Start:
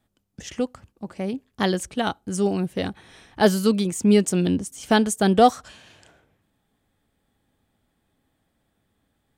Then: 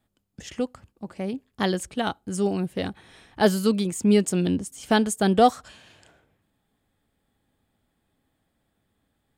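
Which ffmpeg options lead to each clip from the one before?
ffmpeg -i in.wav -af "bandreject=frequency=5900:width=13,volume=-2dB" out.wav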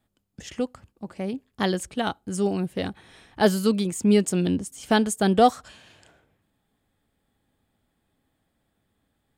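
ffmpeg -i in.wav -af anull out.wav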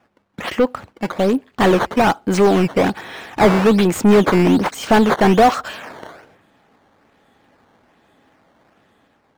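ffmpeg -i in.wav -filter_complex "[0:a]acrusher=samples=10:mix=1:aa=0.000001:lfo=1:lforange=16:lforate=1.2,dynaudnorm=framelen=120:gausssize=9:maxgain=4dB,asplit=2[link_01][link_02];[link_02]highpass=frequency=720:poles=1,volume=27dB,asoftclip=type=tanh:threshold=-3.5dB[link_03];[link_01][link_03]amix=inputs=2:normalize=0,lowpass=frequency=1400:poles=1,volume=-6dB" out.wav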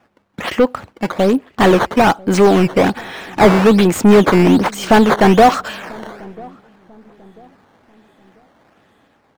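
ffmpeg -i in.wav -filter_complex "[0:a]asplit=2[link_01][link_02];[link_02]adelay=992,lowpass=frequency=840:poles=1,volume=-23dB,asplit=2[link_03][link_04];[link_04]adelay=992,lowpass=frequency=840:poles=1,volume=0.39,asplit=2[link_05][link_06];[link_06]adelay=992,lowpass=frequency=840:poles=1,volume=0.39[link_07];[link_01][link_03][link_05][link_07]amix=inputs=4:normalize=0,volume=3dB" out.wav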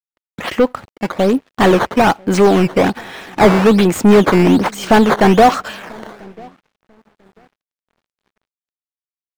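ffmpeg -i in.wav -af "aeval=exprs='sgn(val(0))*max(abs(val(0))-0.0075,0)':channel_layout=same" out.wav

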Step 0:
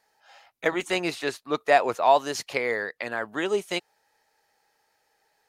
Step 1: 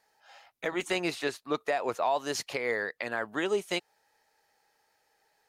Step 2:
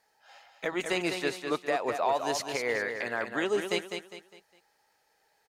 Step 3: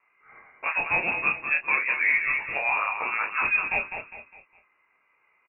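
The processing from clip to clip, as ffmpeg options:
ffmpeg -i in.wav -af "alimiter=limit=-16.5dB:level=0:latency=1:release=164,volume=-1.5dB" out.wav
ffmpeg -i in.wav -af "aecho=1:1:203|406|609|812:0.473|0.17|0.0613|0.0221" out.wav
ffmpeg -i in.wav -filter_complex "[0:a]flanger=delay=17:depth=5.2:speed=1.3,lowpass=frequency=2500:width_type=q:width=0.5098,lowpass=frequency=2500:width_type=q:width=0.6013,lowpass=frequency=2500:width_type=q:width=0.9,lowpass=frequency=2500:width_type=q:width=2.563,afreqshift=-2900,asplit=2[link_01][link_02];[link_02]adelay=30,volume=-7dB[link_03];[link_01][link_03]amix=inputs=2:normalize=0,volume=7dB" out.wav

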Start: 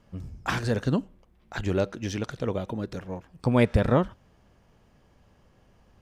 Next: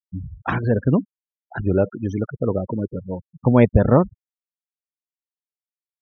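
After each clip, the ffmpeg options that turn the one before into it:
ffmpeg -i in.wav -af "highpass=59,afftfilt=real='re*gte(hypot(re,im),0.0398)':imag='im*gte(hypot(re,im),0.0398)':win_size=1024:overlap=0.75,lowpass=frequency=1300:poles=1,volume=7.5dB" out.wav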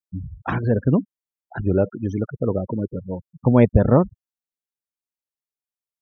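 ffmpeg -i in.wav -af "equalizer=frequency=2500:width=0.42:gain=-3.5" out.wav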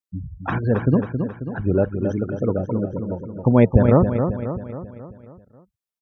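ffmpeg -i in.wav -af "aecho=1:1:270|540|810|1080|1350|1620:0.447|0.232|0.121|0.0628|0.0327|0.017" out.wav

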